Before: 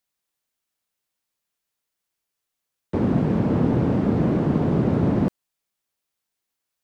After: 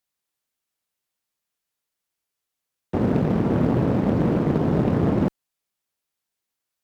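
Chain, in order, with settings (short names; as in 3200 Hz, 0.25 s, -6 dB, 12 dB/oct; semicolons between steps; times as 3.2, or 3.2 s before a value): added harmonics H 5 -26 dB, 7 -25 dB, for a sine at -8.5 dBFS; short-mantissa float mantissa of 6-bit; Doppler distortion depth 0.72 ms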